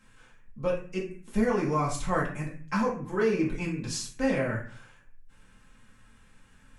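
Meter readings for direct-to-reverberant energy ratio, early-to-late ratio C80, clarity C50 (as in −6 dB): −5.0 dB, 11.5 dB, 7.0 dB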